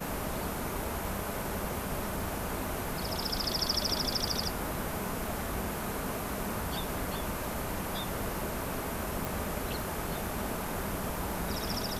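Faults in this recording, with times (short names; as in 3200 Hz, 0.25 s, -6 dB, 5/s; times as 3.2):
crackle 37/s -39 dBFS
9.25 pop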